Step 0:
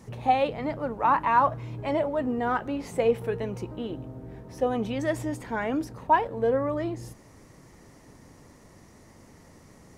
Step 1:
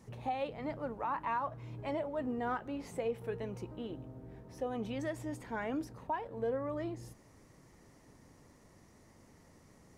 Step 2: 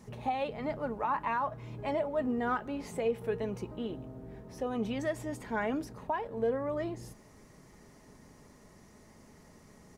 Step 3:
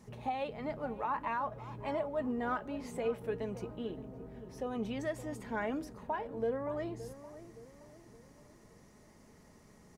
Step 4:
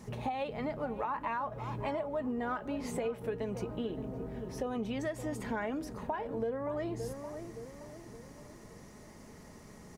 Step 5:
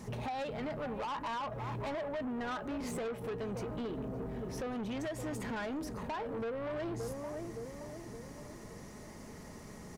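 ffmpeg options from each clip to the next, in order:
-af "alimiter=limit=-18dB:level=0:latency=1:release=244,volume=-8.5dB"
-af "aecho=1:1:4.8:0.31,volume=4dB"
-filter_complex "[0:a]asplit=2[a][b];[b]adelay=569,lowpass=f=1.2k:p=1,volume=-13dB,asplit=2[c][d];[d]adelay=569,lowpass=f=1.2k:p=1,volume=0.46,asplit=2[e][f];[f]adelay=569,lowpass=f=1.2k:p=1,volume=0.46,asplit=2[g][h];[h]adelay=569,lowpass=f=1.2k:p=1,volume=0.46,asplit=2[i][j];[j]adelay=569,lowpass=f=1.2k:p=1,volume=0.46[k];[a][c][e][g][i][k]amix=inputs=6:normalize=0,volume=-3.5dB"
-af "acompressor=threshold=-40dB:ratio=5,volume=7.5dB"
-af "asoftclip=type=tanh:threshold=-38dB,volume=3.5dB"

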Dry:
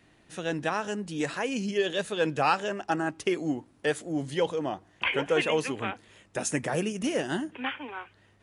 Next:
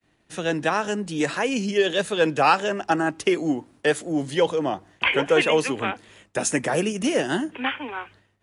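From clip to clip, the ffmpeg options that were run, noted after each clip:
-filter_complex "[0:a]agate=range=-33dB:threshold=-52dB:ratio=3:detection=peak,acrossover=split=180|630|2400[a][b][c][d];[a]alimiter=level_in=17dB:limit=-24dB:level=0:latency=1:release=444,volume=-17dB[e];[e][b][c][d]amix=inputs=4:normalize=0,volume=6.5dB"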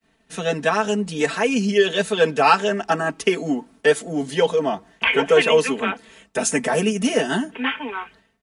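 -af "aecho=1:1:4.5:0.97"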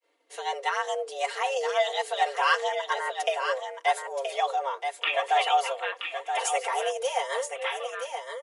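-af "aecho=1:1:975:0.447,afreqshift=270,volume=-8.5dB"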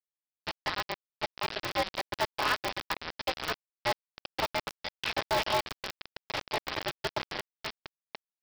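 -af "aresample=11025,acrusher=bits=3:mix=0:aa=0.000001,aresample=44100,aeval=exprs='val(0)*sgn(sin(2*PI*120*n/s))':c=same,volume=-6.5dB"

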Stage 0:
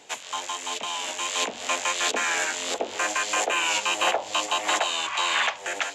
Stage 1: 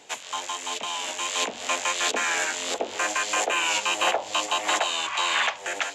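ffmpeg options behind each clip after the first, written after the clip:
-af anull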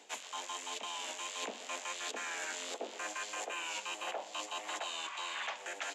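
-af "highpass=f=190:w=0.5412,highpass=f=190:w=1.3066,areverse,acompressor=threshold=-34dB:ratio=5,areverse,aecho=1:1:124:0.141,volume=-4.5dB"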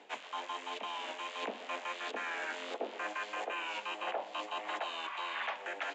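-af "lowpass=2.6k,volume=3.5dB"

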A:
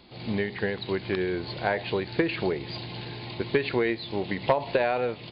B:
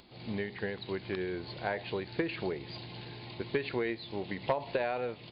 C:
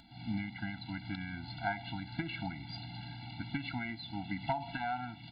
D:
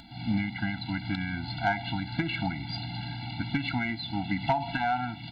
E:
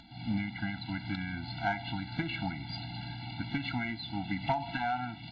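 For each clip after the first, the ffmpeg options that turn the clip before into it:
-af "acompressor=mode=upward:threshold=-47dB:ratio=2.5,volume=-7.5dB"
-af "afftfilt=real='re*eq(mod(floor(b*sr/1024/330),2),0)':imag='im*eq(mod(floor(b*sr/1024/330),2),0)':win_size=1024:overlap=0.75,volume=1.5dB"
-af "asoftclip=type=tanh:threshold=-23.5dB,volume=9dB"
-af "volume=-4.5dB" -ar 16000 -c:a aac -b:a 24k

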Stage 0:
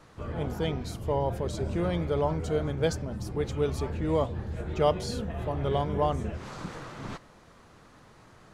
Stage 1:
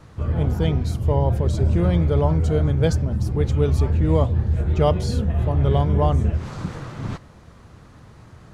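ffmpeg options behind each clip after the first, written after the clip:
-af "equalizer=f=79:w=0.52:g=13,volume=3dB"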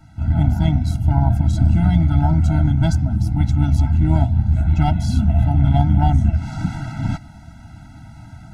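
-af "aeval=exprs='0.562*(cos(1*acos(clip(val(0)/0.562,-1,1)))-cos(1*PI/2))+0.0562*(cos(4*acos(clip(val(0)/0.562,-1,1)))-cos(4*PI/2))':c=same,dynaudnorm=f=150:g=3:m=7dB,afftfilt=real='re*eq(mod(floor(b*sr/1024/320),2),0)':imag='im*eq(mod(floor(b*sr/1024/320),2),0)':win_size=1024:overlap=0.75"

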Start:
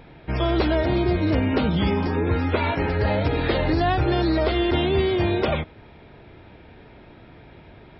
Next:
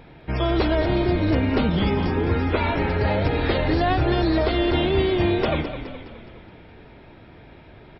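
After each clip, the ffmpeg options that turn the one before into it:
-filter_complex "[0:a]asplit=7[a][b][c][d][e][f][g];[b]adelay=209,afreqshift=-30,volume=-10dB[h];[c]adelay=418,afreqshift=-60,volume=-15.2dB[i];[d]adelay=627,afreqshift=-90,volume=-20.4dB[j];[e]adelay=836,afreqshift=-120,volume=-25.6dB[k];[f]adelay=1045,afreqshift=-150,volume=-30.8dB[l];[g]adelay=1254,afreqshift=-180,volume=-36dB[m];[a][h][i][j][k][l][m]amix=inputs=7:normalize=0"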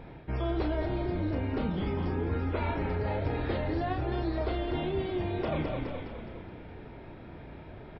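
-filter_complex "[0:a]highshelf=f=2.2k:g=-9.5,areverse,acompressor=threshold=-30dB:ratio=4,areverse,asplit=2[a][b];[b]adelay=33,volume=-7dB[c];[a][c]amix=inputs=2:normalize=0"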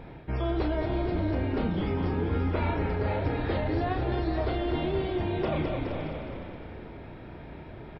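-af "aecho=1:1:471|567:0.335|0.224,volume=2dB"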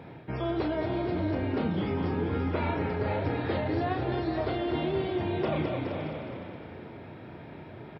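-af "highpass=f=90:w=0.5412,highpass=f=90:w=1.3066"

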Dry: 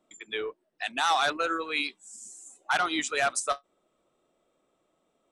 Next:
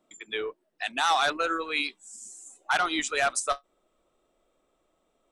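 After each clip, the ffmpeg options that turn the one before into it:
-af "asubboost=boost=5.5:cutoff=55,volume=1dB"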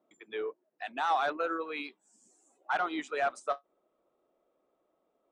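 -af "bandpass=f=530:t=q:w=0.6:csg=0,volume=-2dB"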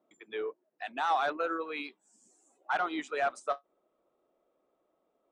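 -af anull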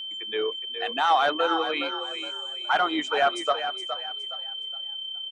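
-filter_complex "[0:a]aeval=exprs='val(0)+0.01*sin(2*PI*3100*n/s)':c=same,asplit=5[a][b][c][d][e];[b]adelay=416,afreqshift=32,volume=-9dB[f];[c]adelay=832,afreqshift=64,volume=-18.9dB[g];[d]adelay=1248,afreqshift=96,volume=-28.8dB[h];[e]adelay=1664,afreqshift=128,volume=-38.7dB[i];[a][f][g][h][i]amix=inputs=5:normalize=0,volume=7.5dB"

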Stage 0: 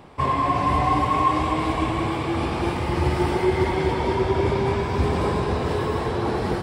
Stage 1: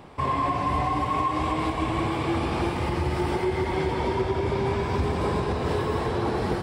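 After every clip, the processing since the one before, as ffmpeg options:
-af "alimiter=limit=-16dB:level=0:latency=1:release=255"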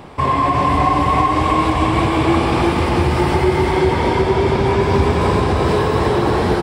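-af "aecho=1:1:353:0.631,volume=9dB"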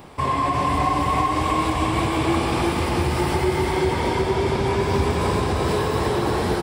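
-af "crystalizer=i=1.5:c=0,volume=-6dB"

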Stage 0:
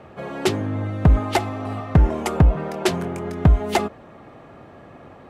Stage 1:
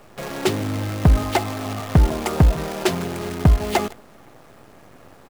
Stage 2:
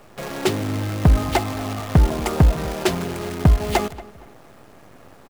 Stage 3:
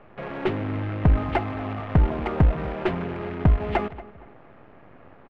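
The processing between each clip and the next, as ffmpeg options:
-af "aecho=1:1:152:0.0794,acrusher=bits=6:dc=4:mix=0:aa=0.000001"
-filter_complex "[0:a]asplit=2[a][b];[b]adelay=232,lowpass=f=2.3k:p=1,volume=-18dB,asplit=2[c][d];[d]adelay=232,lowpass=f=2.3k:p=1,volume=0.35,asplit=2[e][f];[f]adelay=232,lowpass=f=2.3k:p=1,volume=0.35[g];[a][c][e][g]amix=inputs=4:normalize=0"
-filter_complex "[0:a]lowpass=f=2.6k:w=0.5412,lowpass=f=2.6k:w=1.3066,asplit=2[a][b];[b]aeval=exprs='clip(val(0),-1,0.0335)':c=same,volume=-4.5dB[c];[a][c]amix=inputs=2:normalize=0,volume=-6.5dB"

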